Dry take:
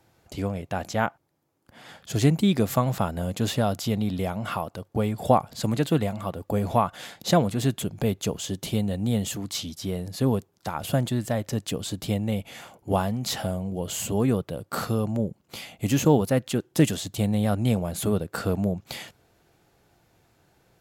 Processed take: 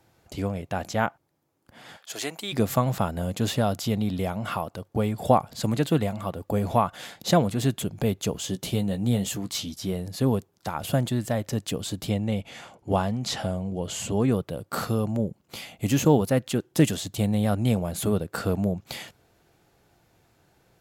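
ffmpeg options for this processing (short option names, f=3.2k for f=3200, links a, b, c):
-filter_complex "[0:a]asplit=3[a][b][c];[a]afade=t=out:st=1.96:d=0.02[d];[b]highpass=680,afade=t=in:st=1.96:d=0.02,afade=t=out:st=2.52:d=0.02[e];[c]afade=t=in:st=2.52:d=0.02[f];[d][e][f]amix=inputs=3:normalize=0,asettb=1/sr,asplit=3[g][h][i];[g]atrim=end=8.334[j];[h]atrim=start=8.33:end=9.93,asetpts=PTS-STARTPTS,afade=t=in:d=0.004:c=qsin,afade=t=out:st=1.596:d=0.004:c=qsin,asplit=2[k][l];[l]adelay=16,volume=-9dB[m];[k][m]amix=inputs=2:normalize=0,atrim=end_sample=70560[n];[i]atrim=start=9.926[o];[j][n]acrossfade=d=0.004:c1=hsin:c2=qsin[p];[p][o]acrossfade=d=0.004:c1=qsin:c2=hsin,asettb=1/sr,asplit=3[q][r][s];[q]atrim=end=12.094[t];[r]atrim=start=12.09:end=14.32,asetpts=PTS-STARTPTS,afade=t=in:d=0.004:c=qsin,afade=t=out:st=2.226:d=0.004:c=qsin,lowpass=8.1k[u];[s]atrim=start=14.316[v];[t][u]acrossfade=d=0.004:c1=hsin:c2=qsin[w];[w][v]acrossfade=d=0.004:c1=qsin:c2=hsin"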